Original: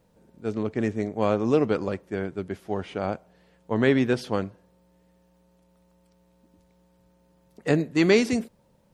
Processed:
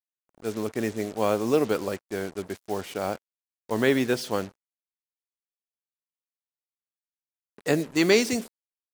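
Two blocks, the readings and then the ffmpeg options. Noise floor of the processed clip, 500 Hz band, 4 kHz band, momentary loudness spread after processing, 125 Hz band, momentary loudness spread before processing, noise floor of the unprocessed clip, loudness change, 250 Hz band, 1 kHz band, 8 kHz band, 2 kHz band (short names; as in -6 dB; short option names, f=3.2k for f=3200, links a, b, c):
under -85 dBFS, -0.5 dB, +3.5 dB, 13 LU, -5.5 dB, 13 LU, -63 dBFS, -1.0 dB, -2.5 dB, 0.0 dB, +7.5 dB, +0.5 dB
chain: -af "acrusher=bits=6:mix=0:aa=0.5,bass=f=250:g=-6,treble=f=4k:g=7"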